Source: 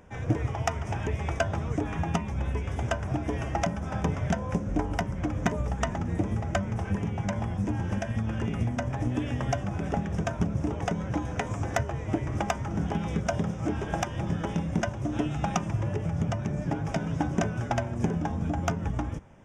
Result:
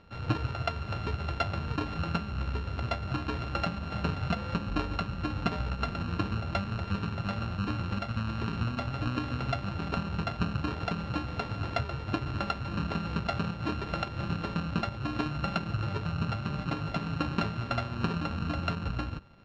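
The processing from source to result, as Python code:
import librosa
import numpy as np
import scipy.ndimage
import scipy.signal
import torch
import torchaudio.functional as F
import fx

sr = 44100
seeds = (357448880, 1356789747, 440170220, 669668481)

y = np.r_[np.sort(x[:len(x) // 32 * 32].reshape(-1, 32), axis=1).ravel(), x[len(x) // 32 * 32:]]
y = scipy.signal.sosfilt(scipy.signal.butter(4, 4500.0, 'lowpass', fs=sr, output='sos'), y)
y = y * 10.0 ** (-3.0 / 20.0)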